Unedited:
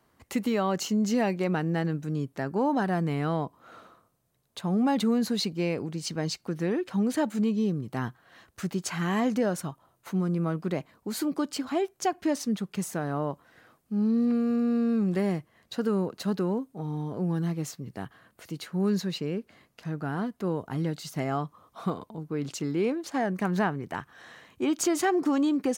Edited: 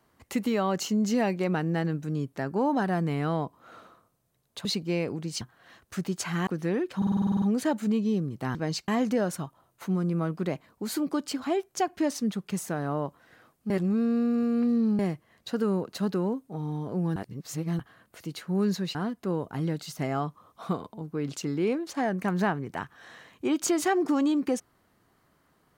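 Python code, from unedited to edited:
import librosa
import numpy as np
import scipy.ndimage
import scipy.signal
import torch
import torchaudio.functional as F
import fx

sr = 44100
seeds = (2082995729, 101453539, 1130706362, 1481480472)

y = fx.edit(x, sr, fx.cut(start_s=4.65, length_s=0.7),
    fx.swap(start_s=6.11, length_s=0.33, other_s=8.07, other_length_s=1.06),
    fx.stutter(start_s=6.94, slice_s=0.05, count=10),
    fx.reverse_span(start_s=13.95, length_s=1.29),
    fx.reverse_span(start_s=17.41, length_s=0.63),
    fx.cut(start_s=19.2, length_s=0.92), tone=tone)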